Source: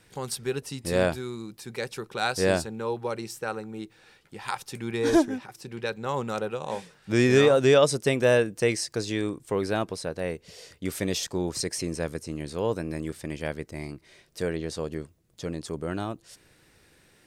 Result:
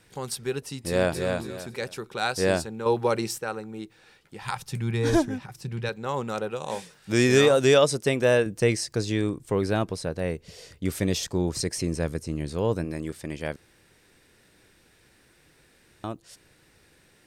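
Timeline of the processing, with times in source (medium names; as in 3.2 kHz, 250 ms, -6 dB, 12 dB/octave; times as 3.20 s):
0.84–1.29 s: echo throw 280 ms, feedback 25%, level -4 dB
2.86–3.38 s: gain +7 dB
4.41–5.89 s: resonant low shelf 210 Hz +9 dB, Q 1.5
6.56–7.83 s: treble shelf 4.4 kHz +8.5 dB
8.46–12.85 s: bass shelf 180 Hz +9 dB
13.56–16.04 s: room tone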